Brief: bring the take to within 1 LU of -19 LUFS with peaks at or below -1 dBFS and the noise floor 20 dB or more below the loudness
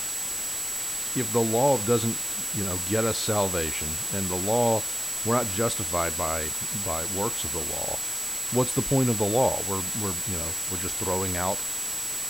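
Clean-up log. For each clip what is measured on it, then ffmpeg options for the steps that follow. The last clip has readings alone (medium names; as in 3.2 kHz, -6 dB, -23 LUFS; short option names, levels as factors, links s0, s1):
steady tone 7.8 kHz; tone level -30 dBFS; noise floor -31 dBFS; noise floor target -46 dBFS; loudness -25.5 LUFS; peak level -10.0 dBFS; loudness target -19.0 LUFS
-> -af "bandreject=f=7800:w=30"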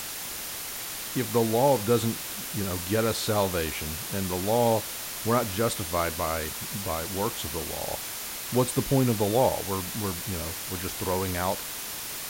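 steady tone not found; noise floor -36 dBFS; noise floor target -48 dBFS
-> -af "afftdn=nr=12:nf=-36"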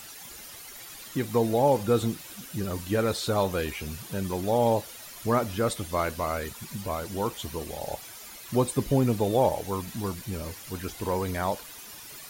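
noise floor -44 dBFS; noise floor target -49 dBFS
-> -af "afftdn=nr=6:nf=-44"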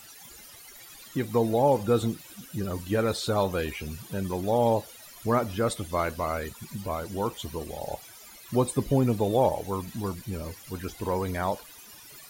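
noise floor -49 dBFS; loudness -28.5 LUFS; peak level -11.5 dBFS; loudness target -19.0 LUFS
-> -af "volume=2.99"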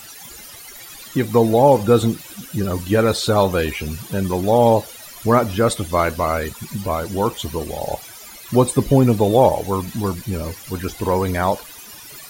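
loudness -19.0 LUFS; peak level -2.0 dBFS; noise floor -39 dBFS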